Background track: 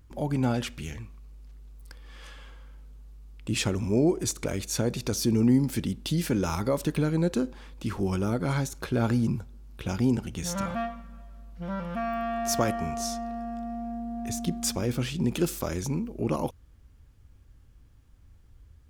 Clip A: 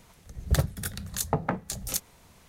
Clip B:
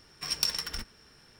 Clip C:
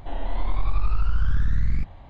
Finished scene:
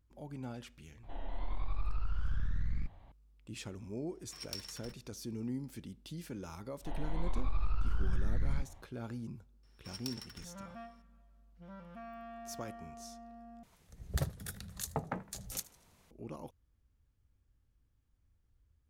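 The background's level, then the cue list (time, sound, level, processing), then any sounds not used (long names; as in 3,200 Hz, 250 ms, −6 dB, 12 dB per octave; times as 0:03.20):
background track −17.5 dB
0:01.03: mix in C −12.5 dB
0:04.10: mix in B −15.5 dB + downward expander −54 dBFS
0:06.79: mix in C −10 dB, fades 0.10 s + level that may rise only so fast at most 580 dB per second
0:09.63: mix in B −16 dB
0:13.63: overwrite with A −10 dB + feedback echo with a swinging delay time 80 ms, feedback 45%, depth 140 cents, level −20 dB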